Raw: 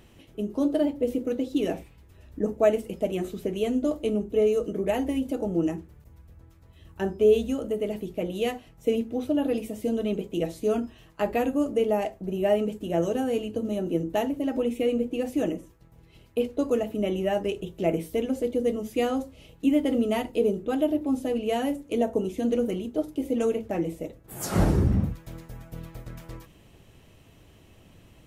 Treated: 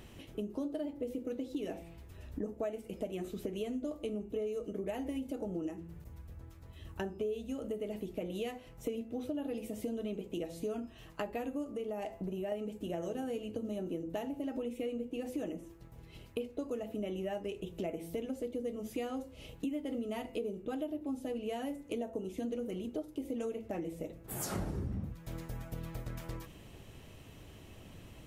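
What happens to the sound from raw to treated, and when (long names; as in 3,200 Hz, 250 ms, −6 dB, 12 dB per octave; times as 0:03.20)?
0:11.64–0:12.52: downward compressor 2 to 1, threshold −30 dBFS
whole clip: hum removal 167.8 Hz, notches 17; downward compressor 5 to 1, threshold −38 dBFS; level +1.5 dB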